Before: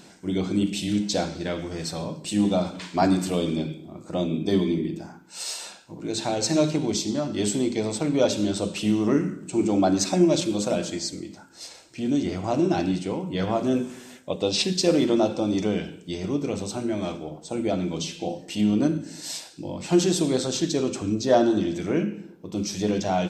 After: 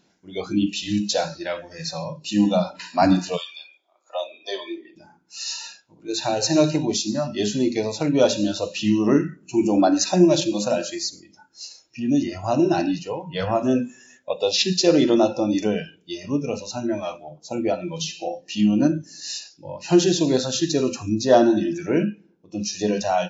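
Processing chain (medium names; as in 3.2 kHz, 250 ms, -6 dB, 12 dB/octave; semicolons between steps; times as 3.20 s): 3.36–4.95 s: high-pass 970 Hz -> 340 Hz 24 dB/octave; spectral noise reduction 18 dB; brick-wall FIR low-pass 7.4 kHz; trim +4 dB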